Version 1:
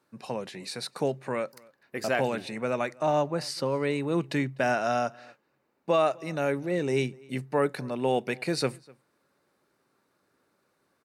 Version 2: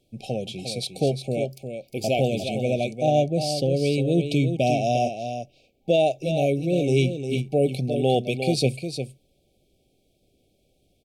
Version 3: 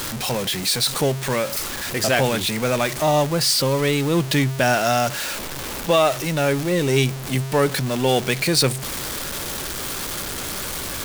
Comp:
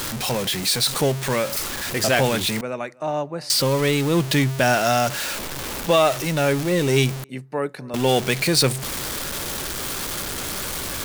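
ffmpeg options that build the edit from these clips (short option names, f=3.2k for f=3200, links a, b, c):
-filter_complex "[0:a]asplit=2[a][b];[2:a]asplit=3[c][d][e];[c]atrim=end=2.612[f];[a]atrim=start=2.608:end=3.502[g];[d]atrim=start=3.498:end=7.242[h];[b]atrim=start=7.238:end=7.942[i];[e]atrim=start=7.938[j];[f][g]acrossfade=d=0.004:c1=hsin:c2=hsin[k];[k][h]acrossfade=d=0.004:c1=hsin:c2=hsin[l];[l][i]acrossfade=d=0.004:c1=hsin:c2=hsin[m];[m][j]acrossfade=d=0.004:c1=hsin:c2=hsin"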